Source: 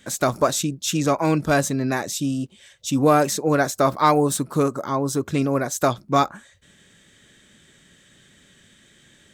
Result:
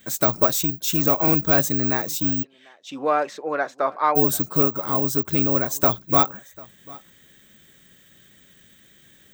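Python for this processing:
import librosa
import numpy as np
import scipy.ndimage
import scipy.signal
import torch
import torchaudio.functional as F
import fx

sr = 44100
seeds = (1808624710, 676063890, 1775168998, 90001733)

y = x + 10.0 ** (-23.0 / 20.0) * np.pad(x, (int(744 * sr / 1000.0), 0))[:len(x)]
y = (np.kron(scipy.signal.resample_poly(y, 1, 2), np.eye(2)[0]) * 2)[:len(y)]
y = fx.bandpass_edges(y, sr, low_hz=510.0, high_hz=fx.line((2.42, 3500.0), (4.15, 2100.0)), at=(2.42, 4.15), fade=0.02)
y = F.gain(torch.from_numpy(y), -2.0).numpy()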